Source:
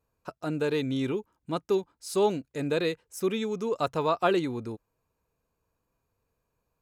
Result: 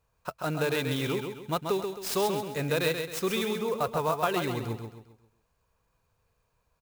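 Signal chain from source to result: peaking EQ 290 Hz -10.5 dB 1.3 oct; compression, threshold -29 dBFS, peak gain reduction 8.5 dB; 3.53–4.21 s: tape spacing loss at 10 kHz 20 dB; on a send: feedback delay 133 ms, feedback 39%, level -6 dB; on the sum: sampling jitter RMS 0.022 ms; trim +6 dB

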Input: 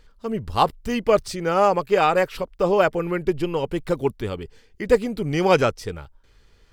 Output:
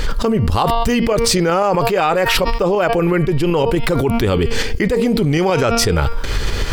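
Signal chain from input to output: de-hum 231.8 Hz, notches 24; tremolo saw up 8 Hz, depth 45%; level flattener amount 100%; trim -1 dB

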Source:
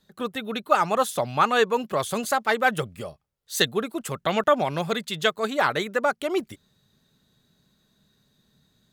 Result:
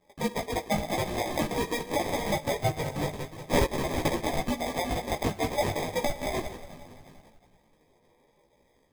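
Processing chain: random holes in the spectrogram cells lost 23%; steep high-pass 500 Hz 36 dB/octave; feedback echo behind a high-pass 181 ms, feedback 63%, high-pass 1.8 kHz, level -10.5 dB; on a send at -12.5 dB: reverberation RT60 1.6 s, pre-delay 8 ms; on the sum: compression 6:1, threshold -30 dBFS, peak gain reduction 15.5 dB; 2.96–4.69 s: tilt shelf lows -8.5 dB, about 1.3 kHz; in parallel at 0 dB: level held to a coarse grid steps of 21 dB; on the sum: sample-and-hold 31×; chorus voices 4, 0.45 Hz, delay 16 ms, depth 4.2 ms; trim +5.5 dB

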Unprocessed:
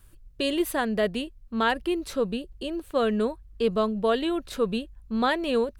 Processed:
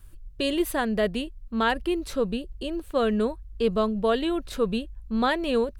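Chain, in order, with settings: bass shelf 89 Hz +8.5 dB

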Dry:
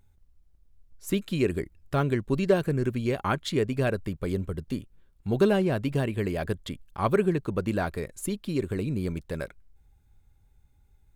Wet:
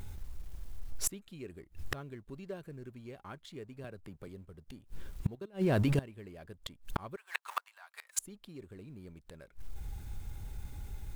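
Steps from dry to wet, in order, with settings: companding laws mixed up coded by mu; 5.35–5.99 s: level held to a coarse grid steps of 19 dB; 7.16–8.19 s: steep high-pass 860 Hz 36 dB/octave; inverted gate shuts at -29 dBFS, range -32 dB; 3.84–4.28 s: three bands compressed up and down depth 100%; trim +11 dB

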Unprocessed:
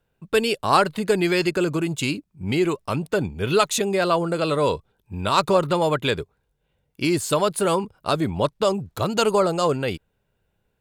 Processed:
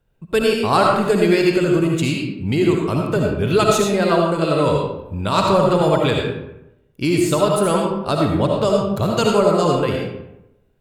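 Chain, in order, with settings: bass shelf 320 Hz +7 dB; algorithmic reverb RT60 0.89 s, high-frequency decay 0.6×, pre-delay 35 ms, DRR -0.5 dB; trim -1 dB

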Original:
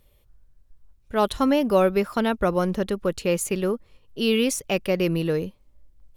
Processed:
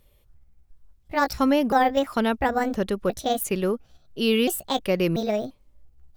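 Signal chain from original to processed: pitch shift switched off and on +5.5 st, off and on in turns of 344 ms

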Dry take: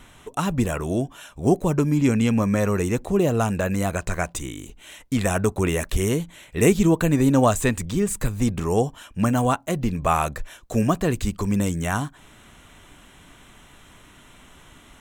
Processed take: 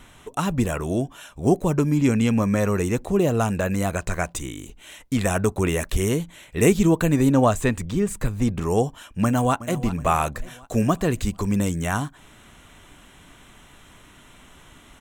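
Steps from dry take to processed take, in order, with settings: 7.29–8.62 s: treble shelf 4.1 kHz -6.5 dB; 9.23–9.80 s: echo throw 370 ms, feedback 50%, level -15 dB

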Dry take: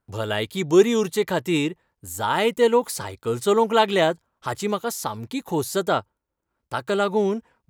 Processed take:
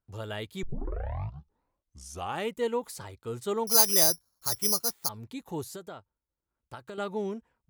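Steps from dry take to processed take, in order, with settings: bass shelf 100 Hz +9 dB; 0.63 s: tape start 1.87 s; 3.67–5.09 s: careless resampling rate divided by 8×, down filtered, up zero stuff; 5.71–6.98 s: compression 12:1, threshold -27 dBFS, peak gain reduction 11.5 dB; trim -12 dB

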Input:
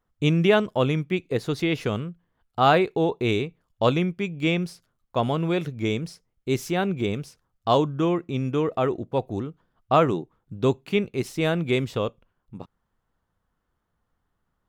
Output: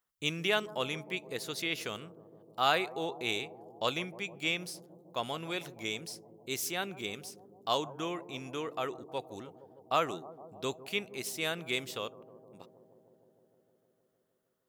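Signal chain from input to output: tilt EQ +4 dB/octave; bucket-brigade echo 154 ms, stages 1024, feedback 80%, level -16 dB; trim -9 dB

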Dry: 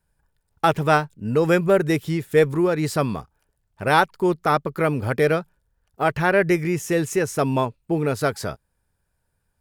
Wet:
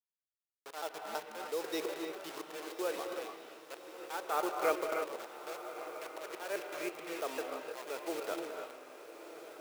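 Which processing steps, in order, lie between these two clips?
slices played last to first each 164 ms, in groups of 2; low-pass sweep 7.6 kHz -> 2.7 kHz, 0.12–3.43 s; slow attack 565 ms; peaking EQ 2 kHz -10 dB 0.86 oct; level-controlled noise filter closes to 2.5 kHz, open at -22 dBFS; word length cut 6-bit, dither none; high-pass 400 Hz 24 dB/octave; echo that smears into a reverb 1232 ms, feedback 56%, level -11.5 dB; on a send at -3 dB: reverberation, pre-delay 3 ms; on the sum: short-mantissa float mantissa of 2-bit; trim -8 dB

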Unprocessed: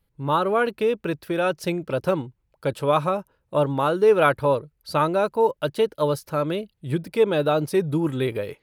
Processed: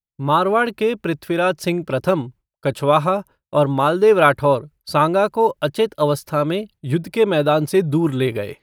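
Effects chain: expander -42 dBFS; peaking EQ 480 Hz -6 dB 0.2 oct; trim +5.5 dB

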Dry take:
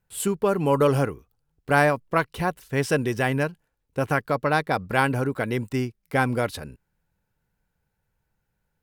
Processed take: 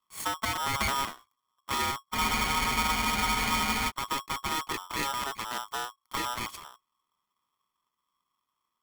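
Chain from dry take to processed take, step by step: comb filter that takes the minimum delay 0.91 ms; spectral freeze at 2.16 s, 1.74 s; polarity switched at an audio rate 1.1 kHz; trim -6 dB

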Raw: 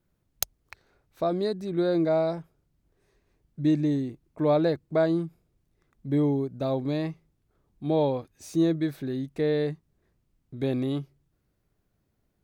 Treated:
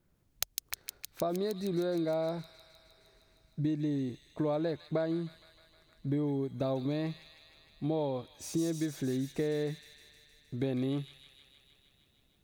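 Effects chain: compression, threshold -31 dBFS, peak gain reduction 12 dB; feedback echo behind a high-pass 155 ms, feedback 75%, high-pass 2.9 kHz, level -3 dB; trim +1.5 dB

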